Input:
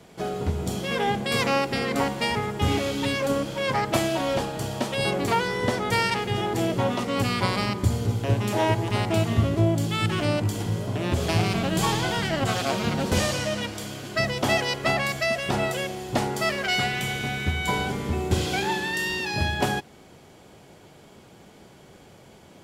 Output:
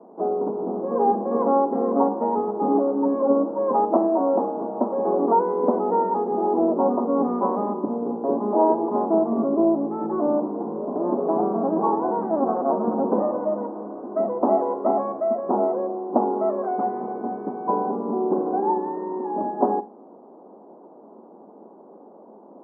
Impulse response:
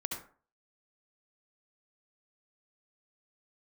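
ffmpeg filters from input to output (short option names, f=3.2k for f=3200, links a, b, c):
-filter_complex "[0:a]asuperpass=centerf=480:order=12:qfactor=0.56,asplit=2[a][b];[1:a]atrim=start_sample=2205,asetrate=74970,aresample=44100[c];[b][c]afir=irnorm=-1:irlink=0,volume=-9.5dB[d];[a][d]amix=inputs=2:normalize=0,volume=4.5dB"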